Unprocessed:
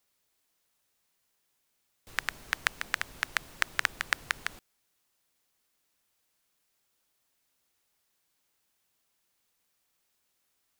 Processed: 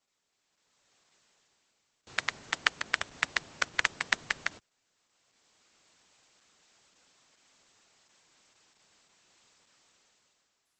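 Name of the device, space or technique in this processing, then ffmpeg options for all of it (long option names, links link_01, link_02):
video call: -af "highpass=110,dynaudnorm=framelen=130:gausssize=13:maxgain=15.5dB" -ar 48000 -c:a libopus -b:a 12k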